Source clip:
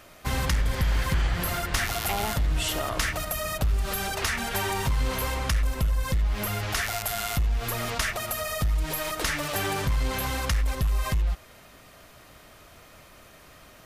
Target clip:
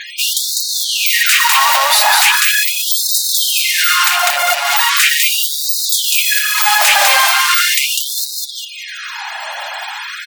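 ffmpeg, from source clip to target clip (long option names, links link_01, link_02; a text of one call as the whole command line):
ffmpeg -i in.wav -af "highpass=frequency=190:width=0.5412,highpass=frequency=190:width=1.3066,aecho=1:1:271|542|813:0.596|0.137|0.0315,volume=27dB,asoftclip=hard,volume=-27dB,asetrate=59535,aresample=44100,afftfilt=real='re*gte(hypot(re,im),0.00251)':imag='im*gte(hypot(re,im),0.00251)':win_size=1024:overlap=0.75,alimiter=level_in=32dB:limit=-1dB:release=50:level=0:latency=1,afftfilt=real='re*gte(b*sr/1024,530*pow(3700/530,0.5+0.5*sin(2*PI*0.39*pts/sr)))':imag='im*gte(b*sr/1024,530*pow(3700/530,0.5+0.5*sin(2*PI*0.39*pts/sr)))':win_size=1024:overlap=0.75,volume=-4dB" out.wav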